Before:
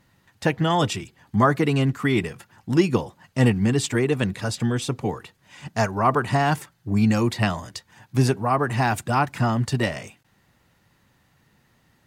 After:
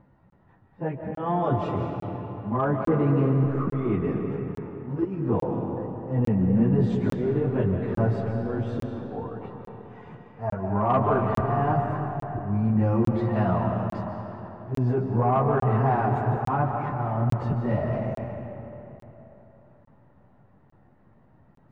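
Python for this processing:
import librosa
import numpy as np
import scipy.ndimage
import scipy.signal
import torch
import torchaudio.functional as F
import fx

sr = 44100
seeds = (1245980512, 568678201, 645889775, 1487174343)

p1 = scipy.signal.sosfilt(scipy.signal.cheby1(2, 1.0, 850.0, 'lowpass', fs=sr, output='sos'), x)
p2 = fx.auto_swell(p1, sr, attack_ms=232.0)
p3 = fx.over_compress(p2, sr, threshold_db=-26.0, ratio=-0.5)
p4 = p2 + F.gain(torch.from_numpy(p3), -2.5).numpy()
p5 = fx.stretch_vocoder_free(p4, sr, factor=1.8)
p6 = 10.0 ** (-12.0 / 20.0) * np.tanh(p5 / 10.0 ** (-12.0 / 20.0))
p7 = fx.rev_freeverb(p6, sr, rt60_s=3.6, hf_ratio=0.6, predelay_ms=105, drr_db=2.5)
y = fx.buffer_crackle(p7, sr, first_s=0.3, period_s=0.85, block=1024, kind='zero')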